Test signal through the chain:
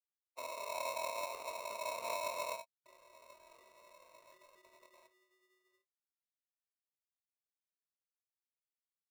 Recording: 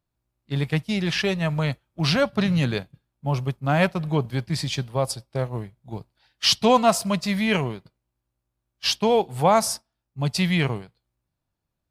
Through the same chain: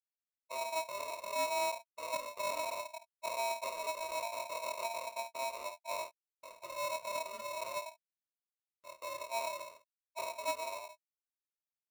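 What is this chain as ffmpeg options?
-af "afftfilt=real='re*gte(hypot(re,im),0.0316)':imag='im*gte(hypot(re,im),0.0316)':win_size=1024:overlap=0.75,acompressor=threshold=-24dB:ratio=5,alimiter=limit=-22dB:level=0:latency=1:release=363,dynaudnorm=f=630:g=9:m=4.5dB,aphaser=in_gain=1:out_gain=1:delay=3.5:decay=0.33:speed=1:type=sinusoidal,aeval=exprs='(mod(22.4*val(0)+1,2)-1)/22.4':c=same,flanger=delay=17.5:depth=7.5:speed=0.49,asuperpass=centerf=180:order=4:qfactor=1.6,aecho=1:1:24|52|68:0.447|0.398|0.133,aeval=exprs='(tanh(50.1*val(0)+0.05)-tanh(0.05))/50.1':c=same,aeval=exprs='val(0)*sgn(sin(2*PI*800*n/s))':c=same,volume=5dB"

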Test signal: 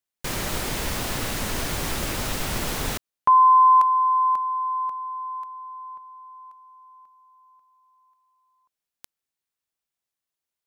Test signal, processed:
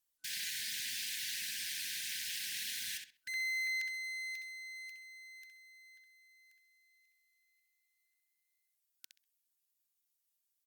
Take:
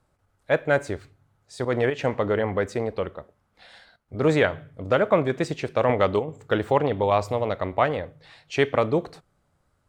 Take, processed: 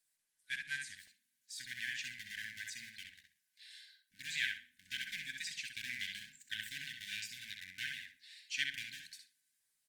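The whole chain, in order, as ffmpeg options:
-filter_complex "[0:a]acrossover=split=830[a][b];[a]aeval=exprs='abs(val(0))':c=same[c];[c][b]amix=inputs=2:normalize=0,equalizer=f=440:t=o:w=1.4:g=-8.5,acrossover=split=5800[d][e];[e]acompressor=threshold=-51dB:ratio=4:attack=1:release=60[f];[d][f]amix=inputs=2:normalize=0,aderivative,asplit=2[g][h];[h]adelay=65,lowpass=f=4.5k:p=1,volume=-3dB,asplit=2[i][j];[j]adelay=65,lowpass=f=4.5k:p=1,volume=0.27,asplit=2[k][l];[l]adelay=65,lowpass=f=4.5k:p=1,volume=0.27,asplit=2[m][n];[n]adelay=65,lowpass=f=4.5k:p=1,volume=0.27[o];[i][k][m][o]amix=inputs=4:normalize=0[p];[g][p]amix=inputs=2:normalize=0,afftfilt=real='re*(1-between(b*sr/4096,290,1500))':imag='im*(1-between(b*sr/4096,290,1500))':win_size=4096:overlap=0.75,volume=2dB" -ar 48000 -c:a libopus -b:a 24k

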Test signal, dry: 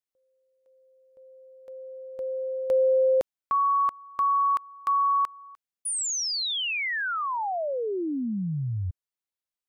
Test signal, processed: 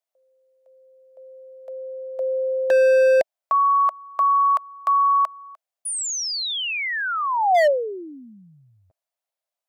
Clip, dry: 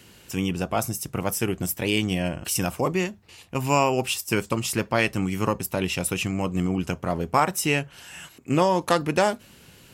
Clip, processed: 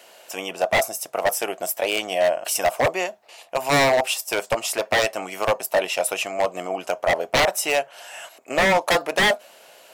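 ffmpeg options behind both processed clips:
-af "highpass=f=640:t=q:w=6.1,aeval=exprs='0.2*(abs(mod(val(0)/0.2+3,4)-2)-1)':c=same,volume=2dB"

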